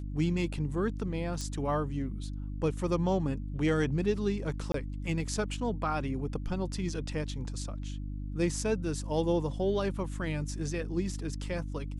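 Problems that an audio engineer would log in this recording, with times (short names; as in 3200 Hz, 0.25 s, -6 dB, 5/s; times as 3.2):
hum 50 Hz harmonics 6 -37 dBFS
1.41 pop -24 dBFS
4.72–4.74 gap 23 ms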